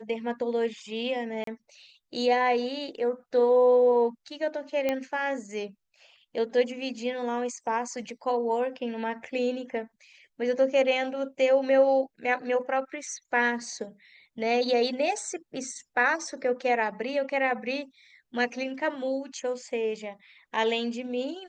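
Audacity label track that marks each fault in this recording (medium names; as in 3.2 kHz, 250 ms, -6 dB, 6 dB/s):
1.440000	1.470000	dropout 33 ms
4.890000	4.890000	pop -14 dBFS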